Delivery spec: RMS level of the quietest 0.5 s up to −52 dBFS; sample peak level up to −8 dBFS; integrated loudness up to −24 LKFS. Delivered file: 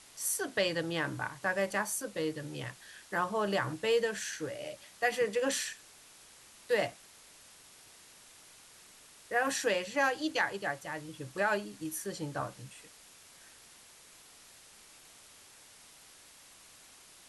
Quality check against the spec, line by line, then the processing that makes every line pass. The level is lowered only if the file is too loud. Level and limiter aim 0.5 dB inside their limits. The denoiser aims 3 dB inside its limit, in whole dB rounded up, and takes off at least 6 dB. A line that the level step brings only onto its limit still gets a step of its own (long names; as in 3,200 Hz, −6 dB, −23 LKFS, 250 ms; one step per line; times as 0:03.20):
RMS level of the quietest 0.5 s −57 dBFS: in spec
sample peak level −17.0 dBFS: in spec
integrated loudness −33.5 LKFS: in spec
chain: no processing needed